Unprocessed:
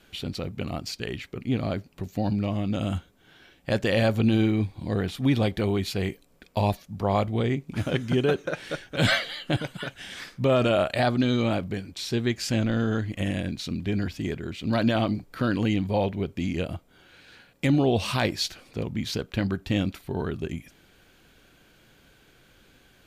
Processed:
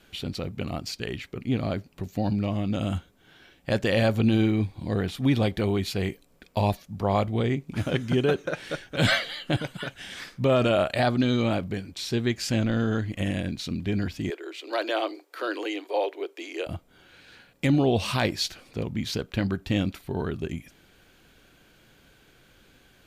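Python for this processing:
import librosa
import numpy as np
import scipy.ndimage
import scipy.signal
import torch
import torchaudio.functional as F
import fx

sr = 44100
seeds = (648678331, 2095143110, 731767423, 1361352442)

y = fx.steep_highpass(x, sr, hz=320.0, slope=72, at=(14.3, 16.67))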